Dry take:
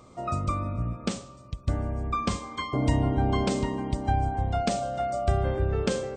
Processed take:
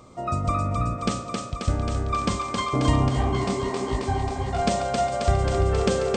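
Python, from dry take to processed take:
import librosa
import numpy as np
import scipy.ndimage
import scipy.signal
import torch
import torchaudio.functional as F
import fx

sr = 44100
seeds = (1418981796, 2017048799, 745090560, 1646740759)

y = fx.echo_thinned(x, sr, ms=268, feedback_pct=79, hz=210.0, wet_db=-3)
y = fx.detune_double(y, sr, cents=53, at=(3.08, 4.58), fade=0.02)
y = F.gain(torch.from_numpy(y), 3.0).numpy()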